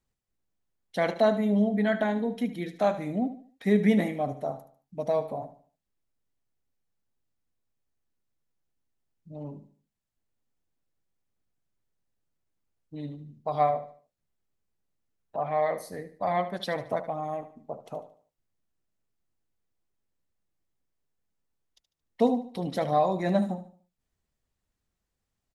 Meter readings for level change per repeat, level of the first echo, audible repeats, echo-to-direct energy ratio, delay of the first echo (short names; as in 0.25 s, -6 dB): -9.0 dB, -13.0 dB, 3, -12.5 dB, 74 ms